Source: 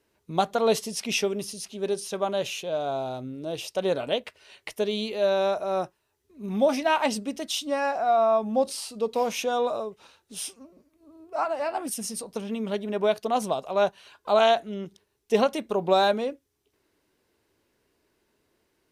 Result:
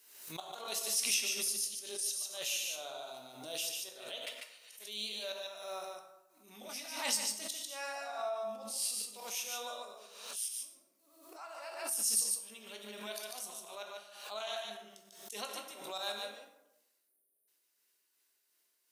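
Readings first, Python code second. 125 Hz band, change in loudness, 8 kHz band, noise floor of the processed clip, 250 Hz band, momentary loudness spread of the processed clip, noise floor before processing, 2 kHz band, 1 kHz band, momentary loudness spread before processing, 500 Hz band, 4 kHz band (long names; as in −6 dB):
below −20 dB, −10.5 dB, +2.5 dB, −77 dBFS, −23.5 dB, 16 LU, −74 dBFS, −9.5 dB, −18.5 dB, 13 LU, −20.5 dB, −4.5 dB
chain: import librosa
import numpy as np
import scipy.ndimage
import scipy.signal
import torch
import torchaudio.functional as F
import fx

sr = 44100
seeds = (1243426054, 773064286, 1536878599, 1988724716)

p1 = x * (1.0 - 0.67 / 2.0 + 0.67 / 2.0 * np.cos(2.0 * np.pi * 2.8 * (np.arange(len(x)) / sr)))
p2 = fx.spec_erase(p1, sr, start_s=16.94, length_s=0.54, low_hz=790.0, high_hz=8600.0)
p3 = fx.level_steps(p2, sr, step_db=23)
p4 = p2 + F.gain(torch.from_numpy(p3), 0.0).numpy()
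p5 = fx.auto_swell(p4, sr, attack_ms=244.0)
p6 = np.diff(p5, prepend=0.0)
p7 = p6 + fx.echo_single(p6, sr, ms=146, db=-3.5, dry=0)
p8 = fx.rev_plate(p7, sr, seeds[0], rt60_s=0.9, hf_ratio=0.55, predelay_ms=0, drr_db=2.5)
p9 = fx.pre_swell(p8, sr, db_per_s=64.0)
y = F.gain(torch.from_numpy(p9), 1.0).numpy()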